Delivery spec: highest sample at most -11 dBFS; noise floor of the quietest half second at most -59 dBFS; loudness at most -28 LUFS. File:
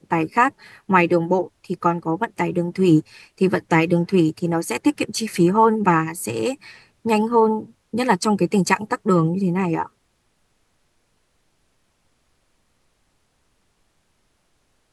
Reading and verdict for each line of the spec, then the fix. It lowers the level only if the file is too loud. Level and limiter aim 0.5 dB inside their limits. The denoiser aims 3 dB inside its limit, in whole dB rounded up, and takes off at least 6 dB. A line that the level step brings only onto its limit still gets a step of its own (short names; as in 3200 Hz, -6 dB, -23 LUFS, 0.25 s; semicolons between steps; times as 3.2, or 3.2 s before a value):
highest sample -2.5 dBFS: fail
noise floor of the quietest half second -66 dBFS: OK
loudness -20.0 LUFS: fail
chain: gain -8.5 dB; limiter -11.5 dBFS